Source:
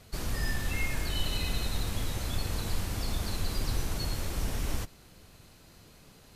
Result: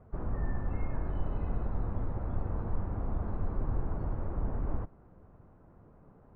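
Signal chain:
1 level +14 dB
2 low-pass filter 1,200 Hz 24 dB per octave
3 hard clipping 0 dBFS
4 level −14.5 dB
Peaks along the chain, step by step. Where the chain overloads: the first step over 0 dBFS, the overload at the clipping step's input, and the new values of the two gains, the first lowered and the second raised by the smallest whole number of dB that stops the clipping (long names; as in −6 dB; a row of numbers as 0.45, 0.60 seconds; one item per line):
−2.0, −4.0, −4.0, −18.5 dBFS
no step passes full scale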